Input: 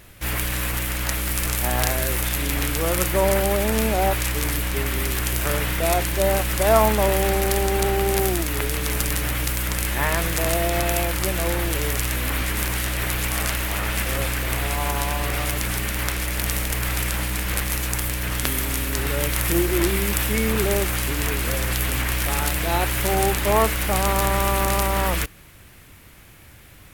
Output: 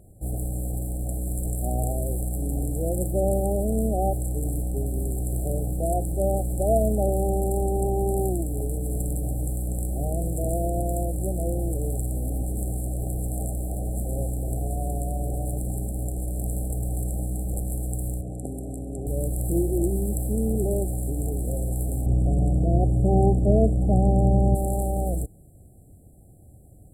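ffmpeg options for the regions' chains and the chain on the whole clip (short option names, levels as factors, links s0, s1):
-filter_complex "[0:a]asettb=1/sr,asplit=3[s0][s1][s2];[s0]atrim=end=18.214[s3];[s1]atrim=start=18.21:end=19.07,asetpts=PTS-STARTPTS,afade=t=in:d=0.004:c=qsin,afade=t=out:st=0.856:d=0.004:c=qsin,highpass=f=140:p=1,adynamicsmooth=sensitivity=2.5:basefreq=3700[s4];[s2]atrim=start=19.066[s5];[s3][s4]acrossfade=d=0.004:c1=hsin:c2=qsin[s6];[s6][s5]acrossfade=d=0.004:c1=qsin:c2=hsin,asettb=1/sr,asplit=3[s7][s8][s9];[s7]atrim=end=22.064[s10];[s8]atrim=start=22.06:end=24.55,asetpts=PTS-STARTPTS,afade=t=in:d=0.004:c=qsin,afade=t=out:st=2.486:d=0.004:c=qsin,lowpass=4600,equalizer=f=140:t=o:w=2.6:g=9.5[s11];[s9]atrim=start=24.546[s12];[s10][s11]acrossfade=d=0.004:c1=hsin:c2=qsin[s13];[s13][s12]acrossfade=d=0.004:c1=qsin:c2=hsin,lowpass=9800,equalizer=f=110:w=0.36:g=5.5,afftfilt=real='re*(1-between(b*sr/4096,800,7300))':imag='im*(1-between(b*sr/4096,800,7300))':win_size=4096:overlap=0.75,volume=0.531"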